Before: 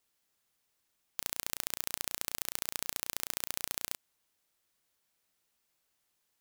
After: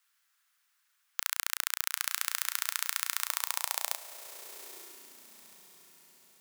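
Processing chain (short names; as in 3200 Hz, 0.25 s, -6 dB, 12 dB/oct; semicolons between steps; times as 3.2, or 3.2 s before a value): diffused feedback echo 0.928 s, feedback 41%, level -13 dB; high-pass sweep 1400 Hz -> 180 Hz, 3.11–5.57; gain +3.5 dB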